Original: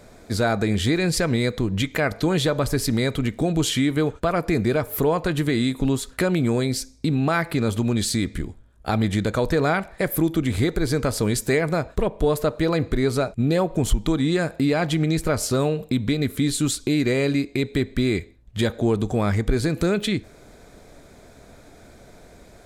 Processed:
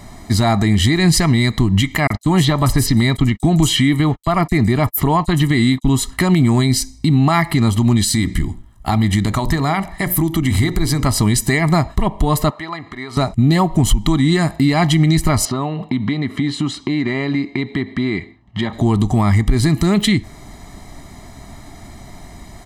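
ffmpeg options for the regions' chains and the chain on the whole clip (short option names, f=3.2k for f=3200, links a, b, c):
-filter_complex "[0:a]asettb=1/sr,asplit=3[a][b][c];[a]atrim=end=2.074[d];[b]atrim=start=2.07:end=5.89,asetpts=PTS-STARTPTS,afade=t=in:d=0.004:c=qsin,afade=t=out:st=3.816:d=0.004:c=qsin,agate=range=-58dB:threshold=-31dB:ratio=16:release=100:detection=peak,acrossover=split=5700[e][f];[e]adelay=30[g];[g][f]amix=inputs=2:normalize=0,atrim=end_sample=168462[h];[c]atrim=start=5.886[i];[d][h]acrossfade=d=0.004:c1=hsin:c2=qsin[j];[j][i]acrossfade=d=0.004:c1=qsin:c2=hsin,asettb=1/sr,asplit=3[k][l][m];[k]atrim=end=8.044[n];[l]atrim=start=8.04:end=11.06,asetpts=PTS-STARTPTS,afade=t=in:d=0.004:c=qsin,afade=t=out:st=3.016:d=0.004:c=qsin,highshelf=f=9.2k:g=4,bandreject=f=60:t=h:w=6,bandreject=f=120:t=h:w=6,bandreject=f=180:t=h:w=6,bandreject=f=240:t=h:w=6,bandreject=f=300:t=h:w=6,bandreject=f=360:t=h:w=6,bandreject=f=420:t=h:w=6,bandreject=f=480:t=h:w=6,bandreject=f=540:t=h:w=6,bandreject=f=600:t=h:w=6,acompressor=threshold=-25dB:ratio=2:attack=3.2:release=140:knee=1:detection=peak[o];[m]atrim=start=11.056[p];[n][o]acrossfade=d=0.004:c1=hsin:c2=qsin[q];[q][p]acrossfade=d=0.004:c1=qsin:c2=hsin,asettb=1/sr,asplit=3[r][s][t];[r]atrim=end=12.504[u];[s]atrim=start=12.5:end=13.17,asetpts=PTS-STARTPTS,afade=t=in:d=0.004:c=qsin,afade=t=out:st=0.666:d=0.004:c=qsin,acompressor=threshold=-25dB:ratio=4:attack=3.2:release=140:knee=1:detection=peak,bandpass=f=1.4k:t=q:w=0.66[v];[t]atrim=start=13.166[w];[u][v]acrossfade=d=0.004:c1=hsin:c2=qsin[x];[x][w]acrossfade=d=0.004:c1=qsin:c2=hsin,asettb=1/sr,asplit=3[y][z][aa];[y]atrim=end=15.454[ab];[z]atrim=start=15.45:end=18.73,asetpts=PTS-STARTPTS,afade=t=in:d=0.004:c=qsin,afade=t=out:st=3.276:d=0.004:c=qsin,equalizer=f=790:t=o:w=2.3:g=4.5,acompressor=threshold=-25dB:ratio=3:attack=3.2:release=140:knee=1:detection=peak,highpass=150,lowpass=3.4k[ac];[aa]atrim=start=18.726[ad];[ab][ac]acrossfade=d=0.004:c1=hsin:c2=qsin[ae];[ae][ad]acrossfade=d=0.004:c1=qsin:c2=hsin,aecho=1:1:1:0.94,alimiter=limit=-12.5dB:level=0:latency=1:release=152,volume=7.5dB"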